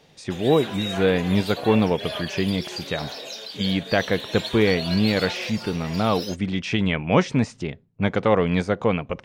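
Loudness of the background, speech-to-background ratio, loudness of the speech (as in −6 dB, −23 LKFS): −32.0 LKFS, 9.0 dB, −23.0 LKFS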